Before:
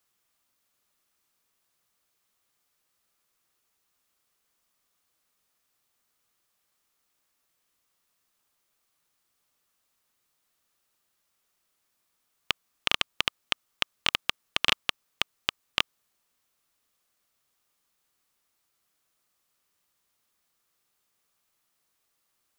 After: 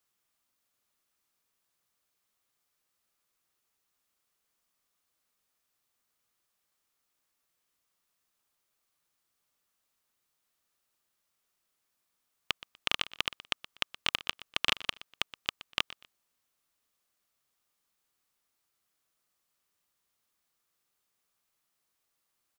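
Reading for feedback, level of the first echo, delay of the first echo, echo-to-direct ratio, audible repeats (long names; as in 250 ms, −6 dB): 26%, −17.0 dB, 122 ms, −16.5 dB, 2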